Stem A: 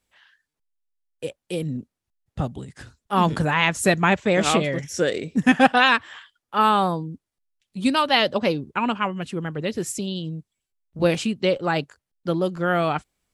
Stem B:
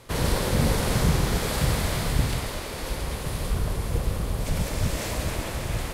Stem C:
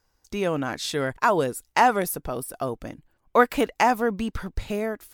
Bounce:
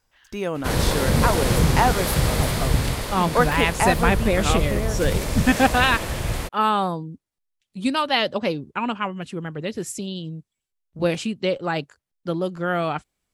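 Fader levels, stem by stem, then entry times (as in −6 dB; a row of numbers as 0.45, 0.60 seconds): −2.0, +3.0, −1.5 decibels; 0.00, 0.55, 0.00 seconds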